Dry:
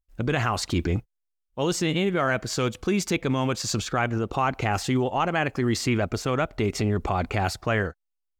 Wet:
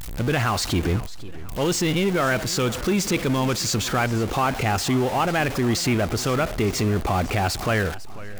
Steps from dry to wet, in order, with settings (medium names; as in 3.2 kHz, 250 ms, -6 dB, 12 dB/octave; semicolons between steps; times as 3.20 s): jump at every zero crossing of -25.5 dBFS; modulated delay 497 ms, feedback 44%, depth 153 cents, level -17.5 dB